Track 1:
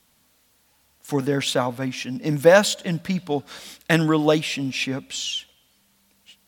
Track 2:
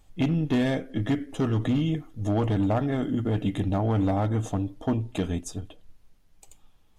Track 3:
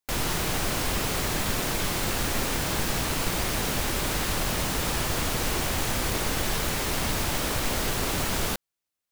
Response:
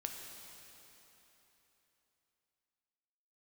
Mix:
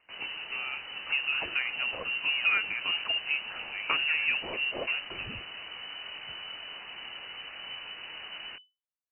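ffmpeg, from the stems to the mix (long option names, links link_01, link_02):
-filter_complex "[0:a]acompressor=threshold=-31dB:ratio=2.5,volume=0dB[link_01];[1:a]highpass=370,volume=-8dB[link_02];[2:a]flanger=delay=16:depth=7.5:speed=1.9,volume=-11.5dB[link_03];[link_01][link_02][link_03]amix=inputs=3:normalize=0,lowpass=frequency=2600:width_type=q:width=0.5098,lowpass=frequency=2600:width_type=q:width=0.6013,lowpass=frequency=2600:width_type=q:width=0.9,lowpass=frequency=2600:width_type=q:width=2.563,afreqshift=-3000"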